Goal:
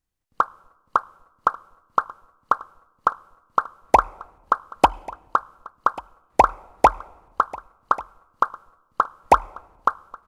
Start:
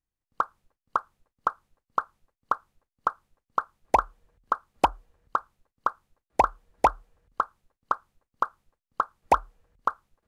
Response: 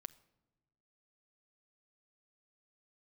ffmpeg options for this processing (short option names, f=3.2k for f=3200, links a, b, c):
-filter_complex "[0:a]aecho=1:1:1140:0.0944,asplit=2[a][b];[1:a]atrim=start_sample=2205,asetrate=26901,aresample=44100[c];[b][c]afir=irnorm=-1:irlink=0,volume=-2.5dB[d];[a][d]amix=inputs=2:normalize=0,volume=2.5dB"